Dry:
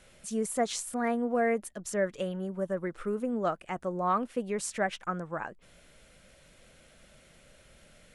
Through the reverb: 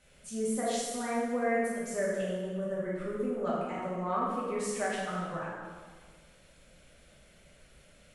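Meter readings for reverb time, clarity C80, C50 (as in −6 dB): 1.6 s, 1.5 dB, −1.0 dB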